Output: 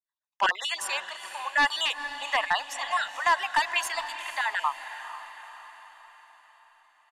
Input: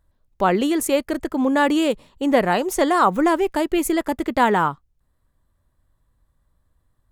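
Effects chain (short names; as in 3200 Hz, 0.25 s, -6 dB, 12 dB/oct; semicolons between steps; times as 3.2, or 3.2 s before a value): random spectral dropouts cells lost 31%; expander -52 dBFS; Bessel high-pass 1400 Hz, order 6; comb 1.1 ms, depth 48%; in parallel at -0.5 dB: limiter -19.5 dBFS, peak gain reduction 7 dB; on the sum: tremolo triangle 0.62 Hz, depth 70%; wavefolder -17.5 dBFS; air absorption 82 m; on a send: diffused feedback echo 0.472 s, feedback 52%, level -11.5 dB; on the sum: gain +3.5 dB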